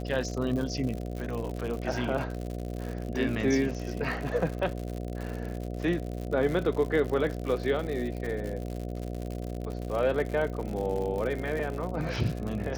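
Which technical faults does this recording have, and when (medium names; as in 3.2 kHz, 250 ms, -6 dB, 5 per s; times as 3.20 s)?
buzz 60 Hz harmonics 12 -35 dBFS
crackle 97 per s -33 dBFS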